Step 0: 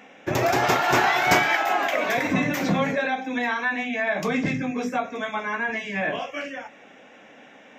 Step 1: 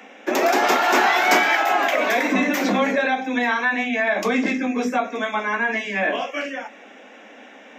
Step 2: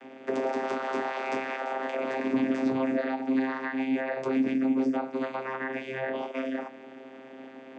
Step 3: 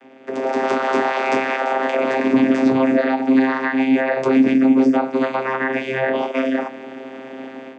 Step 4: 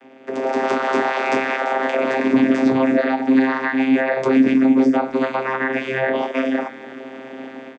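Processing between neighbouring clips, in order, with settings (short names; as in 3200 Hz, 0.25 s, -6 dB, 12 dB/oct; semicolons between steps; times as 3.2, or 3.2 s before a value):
steep high-pass 200 Hz 96 dB/oct; in parallel at -3 dB: limiter -16.5 dBFS, peak gain reduction 11 dB
compressor 2.5:1, threshold -29 dBFS, peak gain reduction 11.5 dB; bell 340 Hz +2.5 dB 0.77 oct; vocoder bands 16, saw 132 Hz
AGC gain up to 12 dB
speakerphone echo 0.31 s, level -17 dB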